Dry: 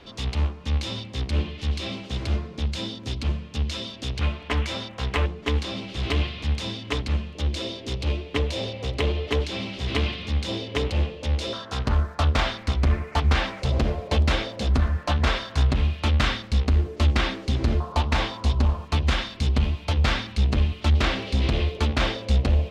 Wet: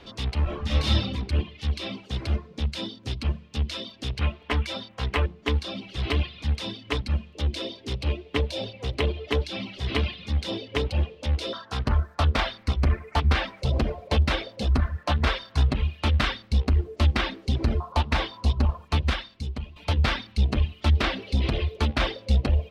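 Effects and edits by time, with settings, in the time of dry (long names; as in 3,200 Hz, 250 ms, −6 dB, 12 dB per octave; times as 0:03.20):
0:00.43–0:01.12: thrown reverb, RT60 1.1 s, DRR −7.5 dB
0:19.04–0:19.76: fade out quadratic, to −10.5 dB
whole clip: reverb reduction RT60 1 s; dynamic equaliser 7,000 Hz, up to −7 dB, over −57 dBFS, Q 2.8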